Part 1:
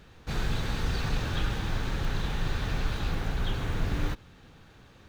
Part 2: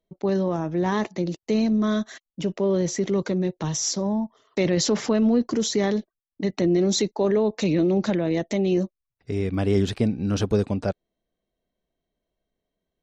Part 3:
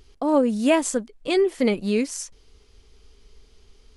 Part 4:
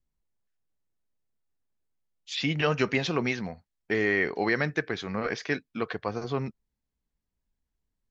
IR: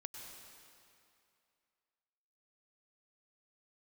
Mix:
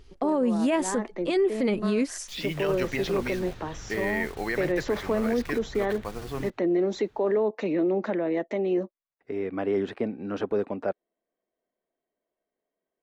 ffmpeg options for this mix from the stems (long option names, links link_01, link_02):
-filter_complex "[0:a]acompressor=mode=upward:threshold=-41dB:ratio=2.5,adelay=2350,volume=-14dB[link_01];[1:a]acrossover=split=260 2400:gain=0.0794 1 0.0794[link_02][link_03][link_04];[link_02][link_03][link_04]amix=inputs=3:normalize=0,volume=-0.5dB[link_05];[2:a]highshelf=frequency=4100:gain=-7,volume=0.5dB,asplit=2[link_06][link_07];[3:a]acrusher=bits=6:mix=0:aa=0.000001,volume=-4.5dB[link_08];[link_07]apad=whole_len=574360[link_09];[link_05][link_09]sidechaincompress=threshold=-26dB:ratio=3:attack=11:release=298[link_10];[link_01][link_10][link_06][link_08]amix=inputs=4:normalize=0,equalizer=frequency=1900:width=7.3:gain=2,alimiter=limit=-17dB:level=0:latency=1:release=16"